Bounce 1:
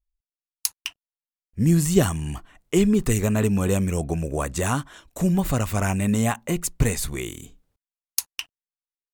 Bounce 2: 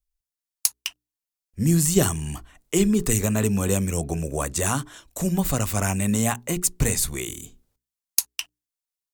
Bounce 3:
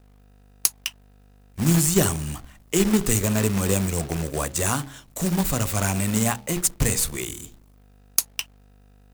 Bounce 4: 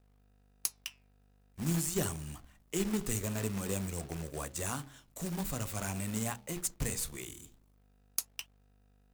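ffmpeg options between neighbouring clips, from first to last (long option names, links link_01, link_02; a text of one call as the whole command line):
ffmpeg -i in.wav -filter_complex "[0:a]bandreject=frequency=60:width_type=h:width=6,bandreject=frequency=120:width_type=h:width=6,bandreject=frequency=180:width_type=h:width=6,bandreject=frequency=240:width_type=h:width=6,bandreject=frequency=300:width_type=h:width=6,bandreject=frequency=360:width_type=h:width=6,bandreject=frequency=420:width_type=h:width=6,acrossover=split=210|4300[link_01][link_02][link_03];[link_03]acontrast=84[link_04];[link_01][link_02][link_04]amix=inputs=3:normalize=0,volume=-1dB" out.wav
ffmpeg -i in.wav -af "bandreject=frequency=67.91:width_type=h:width=4,bandreject=frequency=135.82:width_type=h:width=4,bandreject=frequency=203.73:width_type=h:width=4,bandreject=frequency=271.64:width_type=h:width=4,bandreject=frequency=339.55:width_type=h:width=4,bandreject=frequency=407.46:width_type=h:width=4,bandreject=frequency=475.37:width_type=h:width=4,bandreject=frequency=543.28:width_type=h:width=4,bandreject=frequency=611.19:width_type=h:width=4,bandreject=frequency=679.1:width_type=h:width=4,bandreject=frequency=747.01:width_type=h:width=4,bandreject=frequency=814.92:width_type=h:width=4,bandreject=frequency=882.83:width_type=h:width=4,aeval=exprs='val(0)+0.00224*(sin(2*PI*50*n/s)+sin(2*PI*2*50*n/s)/2+sin(2*PI*3*50*n/s)/3+sin(2*PI*4*50*n/s)/4+sin(2*PI*5*50*n/s)/5)':channel_layout=same,acrusher=bits=2:mode=log:mix=0:aa=0.000001" out.wav
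ffmpeg -i in.wav -af "flanger=delay=1.6:depth=6.5:regen=-86:speed=0.47:shape=triangular,volume=-8.5dB" out.wav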